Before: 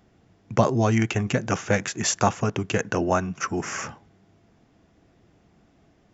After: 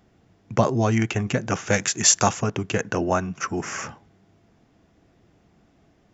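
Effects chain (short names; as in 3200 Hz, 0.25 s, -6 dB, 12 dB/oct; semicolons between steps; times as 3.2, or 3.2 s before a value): 1.67–2.41 high shelf 3800 Hz +11.5 dB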